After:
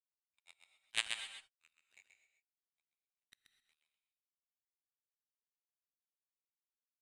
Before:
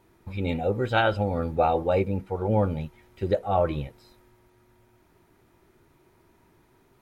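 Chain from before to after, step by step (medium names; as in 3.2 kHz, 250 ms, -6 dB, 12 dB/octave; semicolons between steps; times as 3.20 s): steep high-pass 1.8 kHz 48 dB/octave; level rider gain up to 5 dB; added noise pink -60 dBFS; power-law waveshaper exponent 3; delay 131 ms -5.5 dB; gated-style reverb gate 280 ms rising, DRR 9 dB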